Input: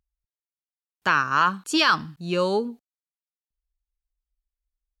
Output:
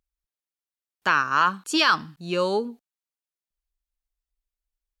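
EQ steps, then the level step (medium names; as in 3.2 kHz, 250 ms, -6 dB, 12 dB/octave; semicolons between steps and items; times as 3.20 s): peaking EQ 85 Hz -7.5 dB 2 oct; 0.0 dB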